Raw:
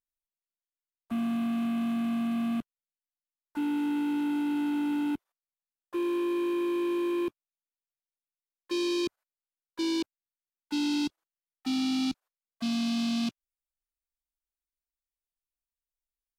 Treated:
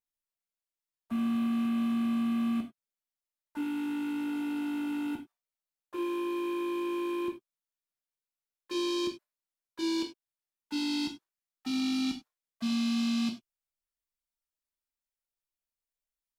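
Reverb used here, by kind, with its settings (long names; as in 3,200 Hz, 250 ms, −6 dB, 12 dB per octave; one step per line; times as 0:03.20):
reverb whose tail is shaped and stops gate 120 ms falling, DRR 1.5 dB
level −3.5 dB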